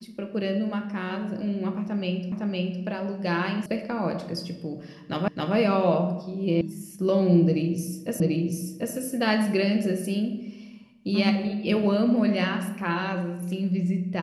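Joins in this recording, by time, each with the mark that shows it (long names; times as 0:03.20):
0:02.32: the same again, the last 0.51 s
0:03.66: cut off before it has died away
0:05.28: the same again, the last 0.27 s
0:06.61: cut off before it has died away
0:08.20: the same again, the last 0.74 s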